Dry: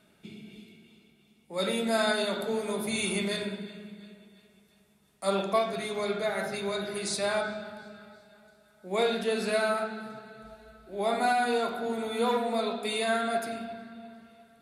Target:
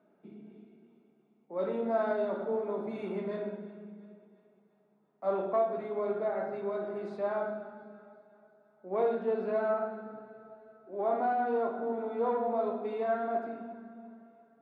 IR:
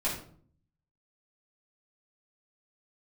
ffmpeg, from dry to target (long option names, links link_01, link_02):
-filter_complex "[0:a]aeval=exprs='(tanh(10*val(0)+0.35)-tanh(0.35))/10':channel_layout=same,asuperpass=centerf=500:order=4:qfactor=0.6,asplit=2[link_01][link_02];[1:a]atrim=start_sample=2205,adelay=21[link_03];[link_02][link_03]afir=irnorm=-1:irlink=0,volume=-17dB[link_04];[link_01][link_04]amix=inputs=2:normalize=0"